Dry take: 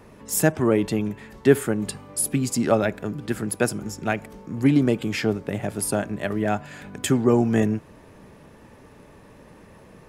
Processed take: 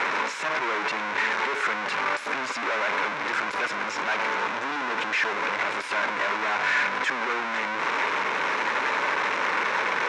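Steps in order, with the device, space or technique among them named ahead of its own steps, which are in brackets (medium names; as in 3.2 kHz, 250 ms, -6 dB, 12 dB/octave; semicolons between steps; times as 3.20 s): home computer beeper (one-bit comparator; cabinet simulation 590–4900 Hz, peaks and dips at 690 Hz -5 dB, 1 kHz +7 dB, 1.5 kHz +7 dB, 2.2 kHz +7 dB, 3.2 kHz -4 dB, 4.6 kHz -8 dB); 4.40–5.32 s: band-stop 2.2 kHz, Q 14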